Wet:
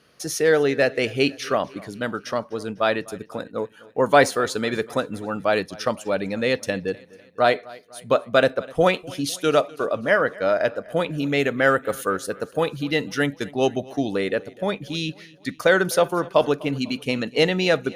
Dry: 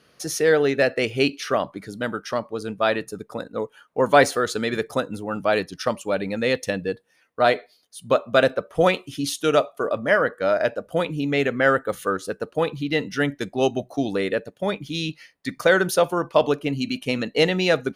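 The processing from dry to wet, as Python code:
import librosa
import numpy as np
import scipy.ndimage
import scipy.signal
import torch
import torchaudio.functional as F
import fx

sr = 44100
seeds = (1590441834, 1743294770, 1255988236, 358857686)

y = fx.high_shelf(x, sr, hz=6400.0, db=7.5, at=(11.18, 13.35))
y = fx.echo_feedback(y, sr, ms=250, feedback_pct=52, wet_db=-22.0)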